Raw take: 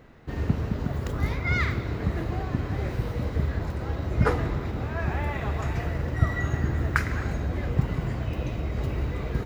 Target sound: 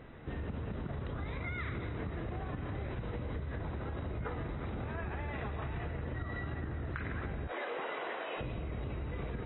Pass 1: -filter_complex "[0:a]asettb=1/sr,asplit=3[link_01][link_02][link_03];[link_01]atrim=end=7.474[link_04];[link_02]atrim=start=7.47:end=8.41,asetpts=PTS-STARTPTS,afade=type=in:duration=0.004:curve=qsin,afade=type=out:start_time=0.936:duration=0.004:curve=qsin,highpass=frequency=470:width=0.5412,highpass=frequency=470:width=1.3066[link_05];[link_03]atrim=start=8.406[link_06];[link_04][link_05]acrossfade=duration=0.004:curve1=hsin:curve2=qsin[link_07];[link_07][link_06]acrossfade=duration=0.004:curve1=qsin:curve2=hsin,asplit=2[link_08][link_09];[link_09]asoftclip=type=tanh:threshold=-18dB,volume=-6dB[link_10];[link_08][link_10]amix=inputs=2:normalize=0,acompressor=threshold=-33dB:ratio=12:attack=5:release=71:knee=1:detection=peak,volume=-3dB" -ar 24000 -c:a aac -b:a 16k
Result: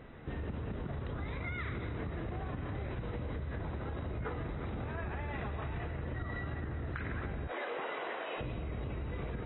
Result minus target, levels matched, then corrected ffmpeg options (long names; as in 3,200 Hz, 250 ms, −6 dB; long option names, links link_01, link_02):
soft clipping: distortion +13 dB
-filter_complex "[0:a]asettb=1/sr,asplit=3[link_01][link_02][link_03];[link_01]atrim=end=7.474[link_04];[link_02]atrim=start=7.47:end=8.41,asetpts=PTS-STARTPTS,afade=type=in:duration=0.004:curve=qsin,afade=type=out:start_time=0.936:duration=0.004:curve=qsin,highpass=frequency=470:width=0.5412,highpass=frequency=470:width=1.3066[link_05];[link_03]atrim=start=8.406[link_06];[link_04][link_05]acrossfade=duration=0.004:curve1=hsin:curve2=qsin[link_07];[link_07][link_06]acrossfade=duration=0.004:curve1=qsin:curve2=hsin,asplit=2[link_08][link_09];[link_09]asoftclip=type=tanh:threshold=-7dB,volume=-6dB[link_10];[link_08][link_10]amix=inputs=2:normalize=0,acompressor=threshold=-33dB:ratio=12:attack=5:release=71:knee=1:detection=peak,volume=-3dB" -ar 24000 -c:a aac -b:a 16k